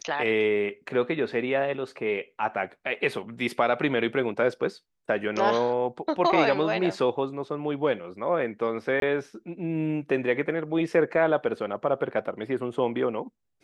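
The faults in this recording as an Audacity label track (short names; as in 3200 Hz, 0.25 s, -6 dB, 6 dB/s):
9.000000	9.020000	gap 22 ms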